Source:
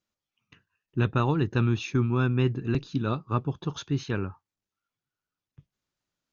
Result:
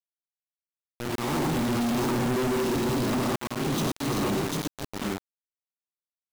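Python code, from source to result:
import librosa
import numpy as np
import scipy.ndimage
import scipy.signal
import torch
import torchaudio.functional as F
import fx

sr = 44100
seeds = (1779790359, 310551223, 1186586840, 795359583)

p1 = np.where(x < 0.0, 10.0 ** (-7.0 / 20.0) * x, x)
p2 = scipy.signal.sosfilt(scipy.signal.butter(2, 290.0, 'highpass', fs=sr, output='sos'), p1)
p3 = fx.peak_eq(p2, sr, hz=1600.0, db=-15.0, octaves=1.6)
p4 = fx.rev_gated(p3, sr, seeds[0], gate_ms=190, shape='rising', drr_db=-0.5)
p5 = fx.rider(p4, sr, range_db=10, speed_s=0.5)
p6 = p4 + F.gain(torch.from_numpy(p5), -3.0).numpy()
p7 = fx.high_shelf(p6, sr, hz=3900.0, db=-7.5)
p8 = p7 + 0.45 * np.pad(p7, (int(1.0 * sr / 1000.0), 0))[:len(p7)]
p9 = fx.echo_multitap(p8, sr, ms=(73, 81, 434, 553, 750, 817), db=(-11.5, -11.5, -16.5, -18.0, -5.0, -19.0))
p10 = fx.auto_swell(p9, sr, attack_ms=315.0)
y = fx.quant_companded(p10, sr, bits=2)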